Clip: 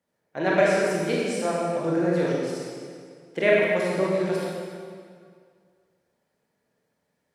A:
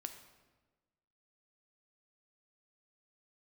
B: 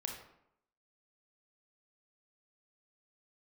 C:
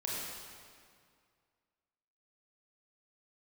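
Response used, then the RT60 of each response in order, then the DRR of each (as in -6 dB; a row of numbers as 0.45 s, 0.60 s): C; 1.3 s, 0.75 s, 2.1 s; 6.5 dB, 1.5 dB, -5.5 dB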